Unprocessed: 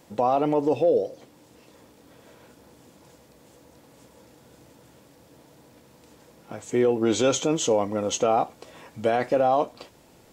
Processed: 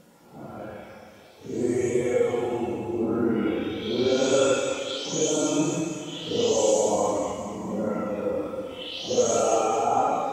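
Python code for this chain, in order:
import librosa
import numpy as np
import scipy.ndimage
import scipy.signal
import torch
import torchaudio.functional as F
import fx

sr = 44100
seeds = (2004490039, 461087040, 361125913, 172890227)

y = fx.spec_delay(x, sr, highs='late', ms=141)
y = fx.room_flutter(y, sr, wall_m=7.3, rt60_s=0.44)
y = fx.paulstretch(y, sr, seeds[0], factor=5.1, window_s=0.05, from_s=6.44)
y = y * 10.0 ** (-3.0 / 20.0)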